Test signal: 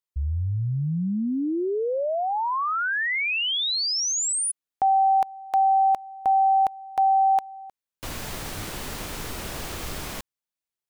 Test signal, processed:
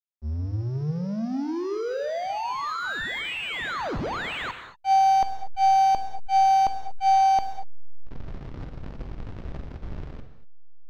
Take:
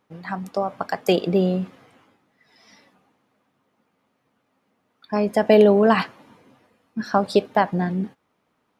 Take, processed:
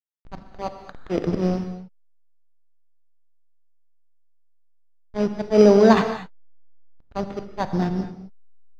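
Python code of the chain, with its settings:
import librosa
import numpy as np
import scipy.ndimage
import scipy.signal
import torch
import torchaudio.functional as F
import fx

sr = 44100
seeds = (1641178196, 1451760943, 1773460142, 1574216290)

y = fx.auto_swell(x, sr, attack_ms=104.0)
y = fx.backlash(y, sr, play_db=-21.0)
y = fx.sample_hold(y, sr, seeds[0], rate_hz=5400.0, jitter_pct=0)
y = fx.air_absorb(y, sr, metres=190.0)
y = fx.rev_gated(y, sr, seeds[1], gate_ms=260, shape='flat', drr_db=7.5)
y = F.gain(torch.from_numpy(y), 2.5).numpy()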